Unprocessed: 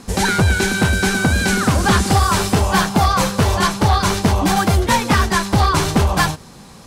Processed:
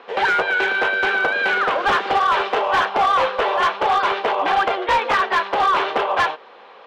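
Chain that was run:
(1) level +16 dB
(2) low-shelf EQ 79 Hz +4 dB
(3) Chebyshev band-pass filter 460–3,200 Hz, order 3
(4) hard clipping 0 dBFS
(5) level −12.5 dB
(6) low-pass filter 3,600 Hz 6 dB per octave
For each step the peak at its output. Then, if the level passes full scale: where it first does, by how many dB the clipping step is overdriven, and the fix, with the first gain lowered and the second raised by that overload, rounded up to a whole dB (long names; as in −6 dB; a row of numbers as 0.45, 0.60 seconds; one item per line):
+8.5, +10.5, +10.0, 0.0, −12.5, −12.5 dBFS
step 1, 10.0 dB
step 1 +6 dB, step 5 −2.5 dB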